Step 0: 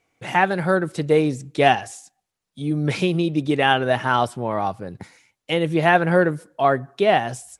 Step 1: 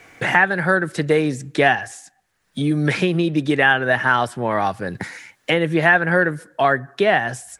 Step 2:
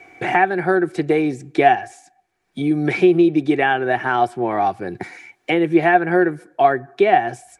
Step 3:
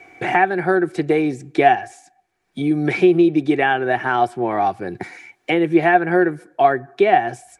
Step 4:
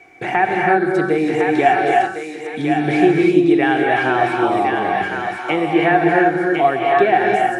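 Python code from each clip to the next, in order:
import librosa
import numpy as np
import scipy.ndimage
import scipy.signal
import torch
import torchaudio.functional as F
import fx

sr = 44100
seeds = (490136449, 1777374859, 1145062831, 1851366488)

y1 = fx.peak_eq(x, sr, hz=1700.0, db=11.0, octaves=0.54)
y1 = fx.band_squash(y1, sr, depth_pct=70)
y1 = y1 * librosa.db_to_amplitude(-1.0)
y2 = fx.high_shelf(y1, sr, hz=8000.0, db=-6.0)
y2 = fx.small_body(y2, sr, hz=(360.0, 730.0, 2300.0), ring_ms=45, db=15)
y2 = y2 * librosa.db_to_amplitude(-5.5)
y3 = y2
y4 = fx.echo_thinned(y3, sr, ms=1057, feedback_pct=32, hz=900.0, wet_db=-3.5)
y4 = fx.rev_gated(y4, sr, seeds[0], gate_ms=350, shape='rising', drr_db=-0.5)
y4 = y4 * librosa.db_to_amplitude(-1.5)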